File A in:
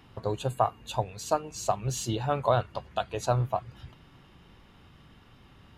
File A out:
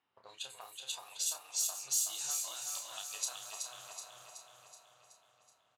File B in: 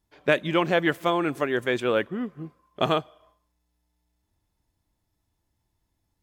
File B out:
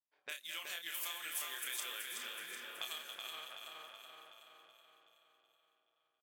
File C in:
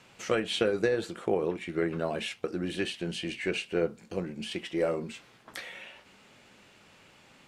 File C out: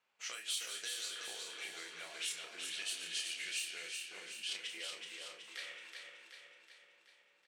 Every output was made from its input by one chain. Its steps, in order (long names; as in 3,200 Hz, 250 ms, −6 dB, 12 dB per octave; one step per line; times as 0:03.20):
feedback delay that plays each chunk backwards 212 ms, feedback 75%, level −11.5 dB
in parallel at −3.5 dB: dead-zone distortion −48 dBFS
on the sum: spectral tilt +4.5 dB per octave
low-pass that shuts in the quiet parts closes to 720 Hz, open at −19.5 dBFS
downward compressor 12 to 1, threshold −31 dBFS
first-order pre-emphasis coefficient 0.97
double-tracking delay 30 ms −6 dB
on a send: repeating echo 375 ms, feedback 55%, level −5 dB